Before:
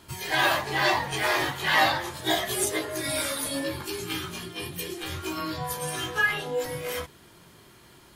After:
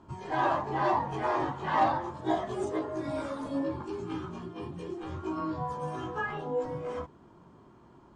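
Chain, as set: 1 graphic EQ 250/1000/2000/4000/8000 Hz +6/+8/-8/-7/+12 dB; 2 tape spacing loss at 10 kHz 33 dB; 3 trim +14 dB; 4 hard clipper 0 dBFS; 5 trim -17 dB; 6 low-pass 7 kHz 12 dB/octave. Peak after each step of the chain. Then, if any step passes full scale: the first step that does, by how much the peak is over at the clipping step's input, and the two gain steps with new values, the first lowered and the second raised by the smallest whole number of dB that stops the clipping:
-5.5 dBFS, -10.5 dBFS, +3.5 dBFS, 0.0 dBFS, -17.0 dBFS, -17.0 dBFS; step 3, 3.5 dB; step 3 +10 dB, step 5 -13 dB

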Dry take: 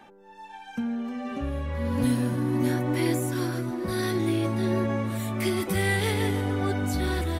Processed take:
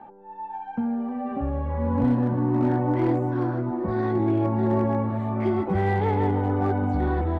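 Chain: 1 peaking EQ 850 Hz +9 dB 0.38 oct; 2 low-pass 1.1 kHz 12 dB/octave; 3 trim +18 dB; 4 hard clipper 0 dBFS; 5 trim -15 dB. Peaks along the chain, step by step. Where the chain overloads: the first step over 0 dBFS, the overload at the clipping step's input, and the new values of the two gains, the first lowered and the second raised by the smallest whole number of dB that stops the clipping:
-11.5 dBFS, -13.5 dBFS, +4.5 dBFS, 0.0 dBFS, -15.0 dBFS; step 3, 4.5 dB; step 3 +13 dB, step 5 -10 dB

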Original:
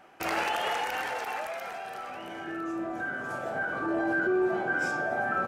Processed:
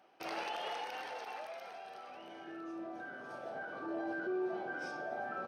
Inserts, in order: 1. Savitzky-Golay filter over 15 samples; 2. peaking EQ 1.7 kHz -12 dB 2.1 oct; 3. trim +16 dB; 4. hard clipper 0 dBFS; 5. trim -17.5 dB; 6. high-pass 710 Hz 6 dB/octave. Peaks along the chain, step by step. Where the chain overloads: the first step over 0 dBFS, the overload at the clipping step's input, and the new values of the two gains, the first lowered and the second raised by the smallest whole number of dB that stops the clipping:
-18.0 dBFS, -21.5 dBFS, -5.5 dBFS, -5.5 dBFS, -23.0 dBFS, -28.0 dBFS; nothing clips

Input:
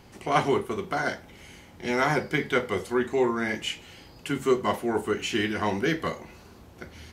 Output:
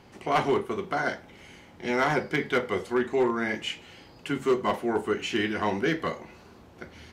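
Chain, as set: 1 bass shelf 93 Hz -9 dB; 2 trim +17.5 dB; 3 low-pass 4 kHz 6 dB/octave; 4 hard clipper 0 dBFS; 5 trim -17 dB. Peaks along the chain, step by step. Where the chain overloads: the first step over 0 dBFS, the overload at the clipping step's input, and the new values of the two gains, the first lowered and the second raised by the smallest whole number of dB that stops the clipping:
-8.5 dBFS, +9.0 dBFS, +9.0 dBFS, 0.0 dBFS, -17.0 dBFS; step 2, 9.0 dB; step 2 +8.5 dB, step 5 -8 dB

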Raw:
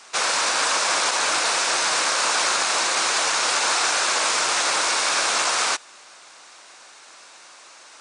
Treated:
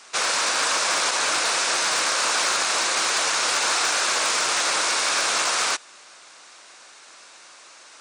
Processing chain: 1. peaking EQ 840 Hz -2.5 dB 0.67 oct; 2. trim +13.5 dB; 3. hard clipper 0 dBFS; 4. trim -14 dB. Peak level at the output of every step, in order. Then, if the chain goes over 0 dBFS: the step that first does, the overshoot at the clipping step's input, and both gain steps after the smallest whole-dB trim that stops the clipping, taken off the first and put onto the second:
-8.5 dBFS, +5.0 dBFS, 0.0 dBFS, -14.0 dBFS; step 2, 5.0 dB; step 2 +8.5 dB, step 4 -9 dB

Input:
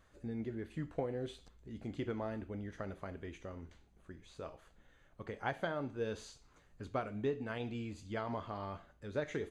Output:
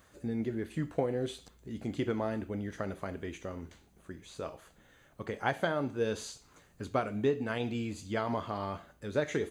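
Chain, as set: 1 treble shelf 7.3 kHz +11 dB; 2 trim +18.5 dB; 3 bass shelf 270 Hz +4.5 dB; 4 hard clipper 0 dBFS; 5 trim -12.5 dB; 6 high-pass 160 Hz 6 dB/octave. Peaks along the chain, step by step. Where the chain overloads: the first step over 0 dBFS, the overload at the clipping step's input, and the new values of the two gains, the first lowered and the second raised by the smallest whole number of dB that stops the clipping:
-20.5 dBFS, -2.0 dBFS, -2.0 dBFS, -2.0 dBFS, -14.5 dBFS, -14.0 dBFS; nothing clips

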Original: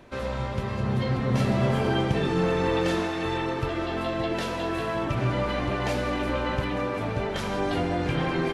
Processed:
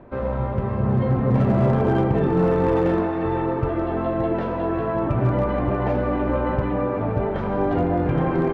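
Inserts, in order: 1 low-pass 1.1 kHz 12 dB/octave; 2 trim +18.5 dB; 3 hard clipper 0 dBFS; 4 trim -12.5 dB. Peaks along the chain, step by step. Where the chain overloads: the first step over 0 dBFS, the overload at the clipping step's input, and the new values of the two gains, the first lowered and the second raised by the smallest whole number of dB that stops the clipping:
-12.5 dBFS, +6.0 dBFS, 0.0 dBFS, -12.5 dBFS; step 2, 6.0 dB; step 2 +12.5 dB, step 4 -6.5 dB

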